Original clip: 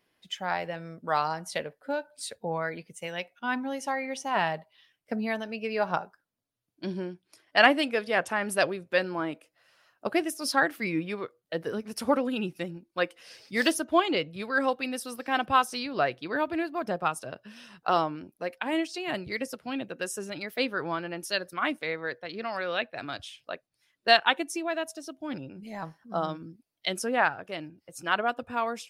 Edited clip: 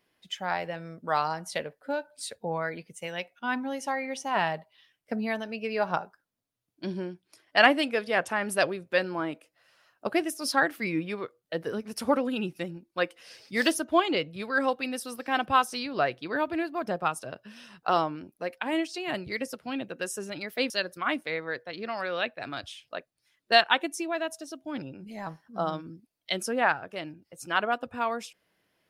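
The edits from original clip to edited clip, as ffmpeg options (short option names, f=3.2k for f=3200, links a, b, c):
-filter_complex "[0:a]asplit=2[a][b];[a]atrim=end=20.702[c];[b]atrim=start=21.258[d];[c][d]acrossfade=d=0.004:c1=hsin:c2=hsin"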